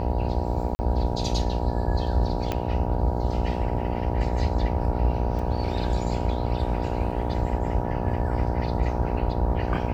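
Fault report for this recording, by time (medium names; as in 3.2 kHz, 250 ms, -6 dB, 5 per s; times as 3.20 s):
buzz 60 Hz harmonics 16 -29 dBFS
0.75–0.79 s: dropout 40 ms
2.52 s: pop -13 dBFS
5.39 s: dropout 4.2 ms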